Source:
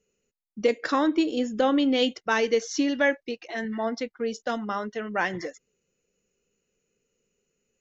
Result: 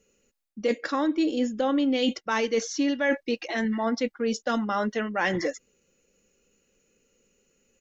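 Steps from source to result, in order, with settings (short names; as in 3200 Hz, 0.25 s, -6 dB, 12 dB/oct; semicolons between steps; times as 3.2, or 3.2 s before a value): comb 3.6 ms, depth 33%; reverse; compressor 5:1, threshold -31 dBFS, peak gain reduction 14 dB; reverse; gain +8 dB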